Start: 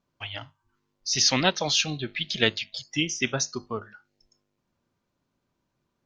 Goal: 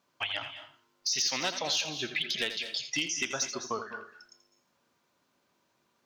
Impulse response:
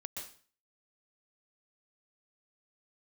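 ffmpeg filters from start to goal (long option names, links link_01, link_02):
-filter_complex "[0:a]highpass=frequency=640:poles=1,acompressor=threshold=-39dB:ratio=4,asoftclip=type=hard:threshold=-29.5dB,asplit=2[link_01][link_02];[1:a]atrim=start_sample=2205,adelay=83[link_03];[link_02][link_03]afir=irnorm=-1:irlink=0,volume=-6dB[link_04];[link_01][link_04]amix=inputs=2:normalize=0,volume=8.5dB"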